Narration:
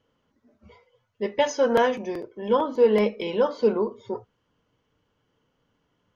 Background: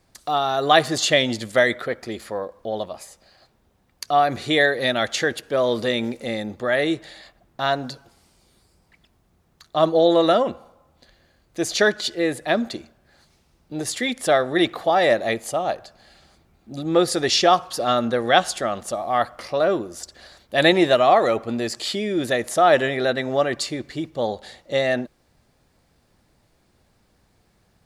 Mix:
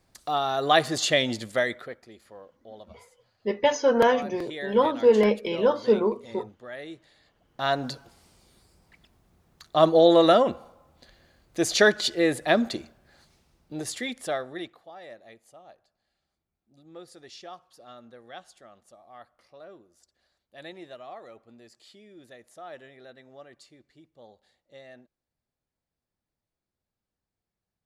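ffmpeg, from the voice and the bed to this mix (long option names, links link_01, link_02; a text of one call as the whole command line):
ffmpeg -i stem1.wav -i stem2.wav -filter_complex "[0:a]adelay=2250,volume=0.5dB[link_01];[1:a]volume=13.5dB,afade=type=out:start_time=1.33:duration=0.75:silence=0.199526,afade=type=in:start_time=7.25:duration=0.66:silence=0.125893,afade=type=out:start_time=12.89:duration=1.91:silence=0.0473151[link_02];[link_01][link_02]amix=inputs=2:normalize=0" out.wav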